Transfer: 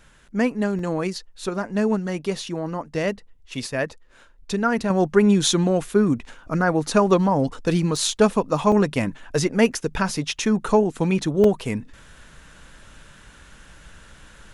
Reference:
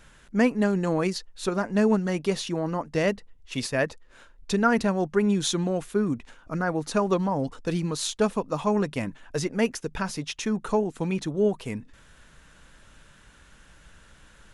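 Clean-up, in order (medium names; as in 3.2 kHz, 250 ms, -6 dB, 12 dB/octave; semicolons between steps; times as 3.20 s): interpolate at 0.79/7.96/8.72/11.44 s, 2.8 ms; trim 0 dB, from 4.90 s -6.5 dB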